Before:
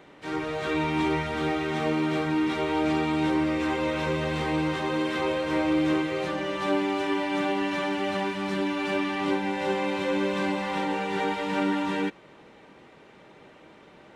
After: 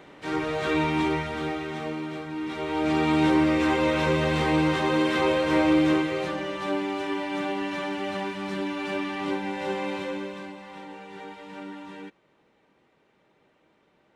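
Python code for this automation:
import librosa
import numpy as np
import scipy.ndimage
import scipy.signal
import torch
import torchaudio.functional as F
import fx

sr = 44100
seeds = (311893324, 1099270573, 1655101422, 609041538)

y = fx.gain(x, sr, db=fx.line((0.79, 2.5), (2.28, -9.0), (3.11, 4.0), (5.7, 4.0), (6.62, -2.5), (9.95, -2.5), (10.54, -13.5)))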